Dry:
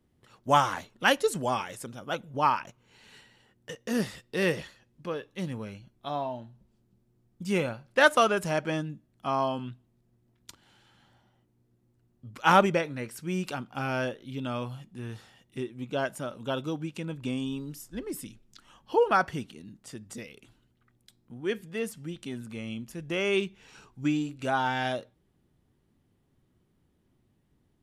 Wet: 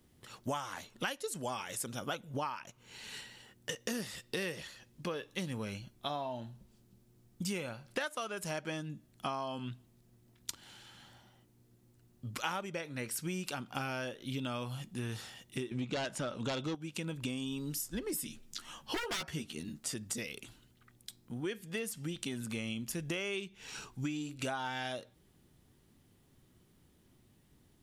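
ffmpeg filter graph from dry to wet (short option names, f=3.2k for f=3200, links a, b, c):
-filter_complex "[0:a]asettb=1/sr,asplit=3[a][b][c];[a]atrim=end=15.714[d];[b]atrim=start=15.71:end=16.75,asetpts=PTS-STARTPTS,afade=t=in:d=0.004:c=qsin,afade=t=out:st=1.036:d=0.004:c=qsin,lowpass=5.5k,aeval=exprs='0.133*sin(PI/2*2.51*val(0)/0.133)':c=same[e];[c]atrim=start=16.746[f];[d][e]acrossfade=d=0.004:c1=hsin:c2=qsin[g];[g][f]acrossfade=d=0.004:c1=qsin:c2=hsin,asettb=1/sr,asplit=3[h][i][j];[h]atrim=end=18.114[k];[i]atrim=start=18.11:end=19.94,asetpts=PTS-STARTPTS,afade=t=in:d=0.004:c=qsin,afade=t=out:st=1.826:d=0.004:c=qsin,aeval=exprs='0.0631*(abs(mod(val(0)/0.0631+3,4)-2)-1)':c=same,asplit=2[l][m];[m]adelay=13,volume=-4.5dB[n];[l][n]amix=inputs=2:normalize=0,atrim=end_sample=80703[o];[j]atrim=start=19.936[p];[k][o]acrossfade=d=0.004:c1=hsin:c2=qsin[q];[q][p]acrossfade=d=0.004:c1=qsin:c2=hsin,highshelf=f=2.7k:g=9.5,acompressor=threshold=-37dB:ratio=16,volume=3dB"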